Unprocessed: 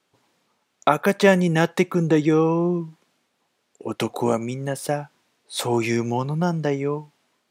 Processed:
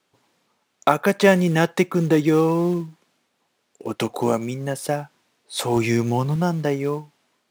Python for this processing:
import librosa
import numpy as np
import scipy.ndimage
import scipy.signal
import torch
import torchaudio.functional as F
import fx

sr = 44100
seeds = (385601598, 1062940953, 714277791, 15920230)

p1 = fx.low_shelf(x, sr, hz=140.0, db=7.5, at=(5.76, 6.36))
p2 = fx.quant_float(p1, sr, bits=2)
p3 = p1 + F.gain(torch.from_numpy(p2), -3.0).numpy()
y = F.gain(torch.from_numpy(p3), -4.0).numpy()